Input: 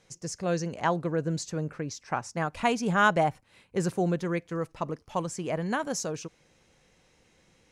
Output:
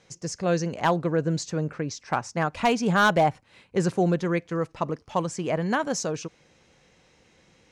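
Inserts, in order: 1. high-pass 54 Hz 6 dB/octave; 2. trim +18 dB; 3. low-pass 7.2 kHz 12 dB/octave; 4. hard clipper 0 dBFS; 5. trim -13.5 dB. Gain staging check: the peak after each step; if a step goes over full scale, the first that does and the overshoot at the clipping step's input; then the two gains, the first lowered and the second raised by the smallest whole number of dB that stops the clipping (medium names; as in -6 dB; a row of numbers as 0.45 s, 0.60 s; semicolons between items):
-10.5 dBFS, +7.5 dBFS, +7.5 dBFS, 0.0 dBFS, -13.5 dBFS; step 2, 7.5 dB; step 2 +10 dB, step 5 -5.5 dB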